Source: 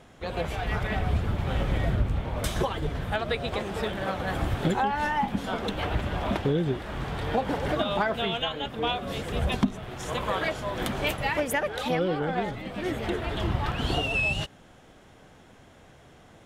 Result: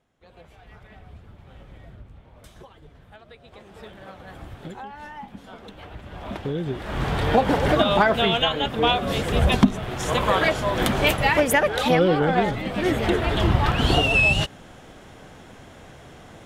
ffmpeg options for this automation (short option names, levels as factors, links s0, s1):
-af "volume=2.51,afade=t=in:st=3.43:d=0.43:silence=0.446684,afade=t=in:st=6.01:d=0.72:silence=0.266073,afade=t=in:st=6.73:d=0.33:silence=0.375837"